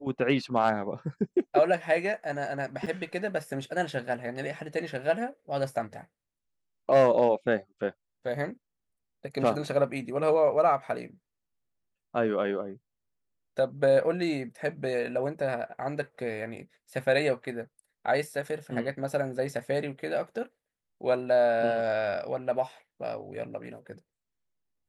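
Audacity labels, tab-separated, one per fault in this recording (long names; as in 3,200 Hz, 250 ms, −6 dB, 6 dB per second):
2.860000	2.870000	drop-out 5.8 ms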